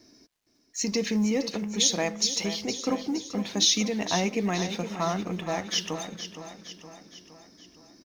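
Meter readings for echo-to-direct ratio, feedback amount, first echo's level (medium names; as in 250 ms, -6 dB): -9.0 dB, 54%, -10.5 dB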